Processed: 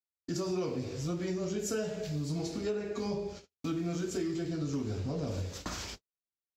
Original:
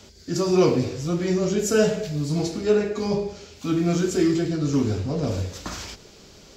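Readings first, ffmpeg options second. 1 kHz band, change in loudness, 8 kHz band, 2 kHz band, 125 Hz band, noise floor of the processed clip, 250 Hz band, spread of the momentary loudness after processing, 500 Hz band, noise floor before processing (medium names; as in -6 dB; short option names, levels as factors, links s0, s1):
-11.5 dB, -12.0 dB, -9.5 dB, -12.0 dB, -10.5 dB, under -85 dBFS, -11.5 dB, 6 LU, -13.0 dB, -49 dBFS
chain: -af "agate=range=0.00141:threshold=0.0126:ratio=16:detection=peak,acompressor=threshold=0.0501:ratio=6,volume=0.562"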